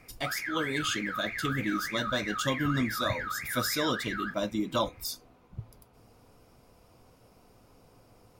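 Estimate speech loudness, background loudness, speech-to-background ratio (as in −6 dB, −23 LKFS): −32.0 LKFS, −35.0 LKFS, 3.0 dB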